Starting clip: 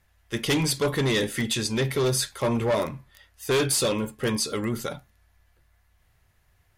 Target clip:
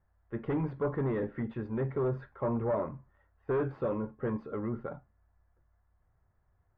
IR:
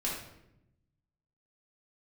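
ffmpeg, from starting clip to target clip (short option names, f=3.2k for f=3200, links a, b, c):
-af "lowpass=f=1.4k:w=0.5412,lowpass=f=1.4k:w=1.3066,volume=-6.5dB"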